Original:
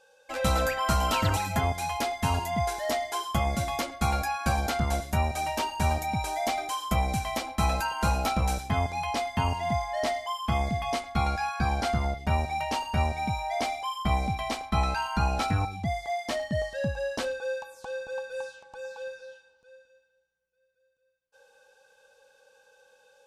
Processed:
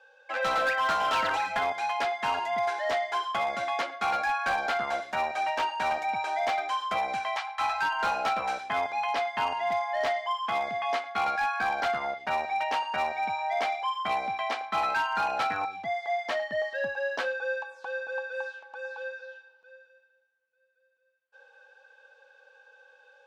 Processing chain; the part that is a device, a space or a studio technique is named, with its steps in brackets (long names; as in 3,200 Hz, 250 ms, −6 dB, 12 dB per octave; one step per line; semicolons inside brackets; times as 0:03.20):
0:07.36–0:07.92: elliptic band-stop filter 100–790 Hz
megaphone (band-pass filter 580–3,100 Hz; parametric band 1,600 Hz +5 dB 0.38 octaves; hard clipping −25 dBFS, distortion −18 dB)
level +3 dB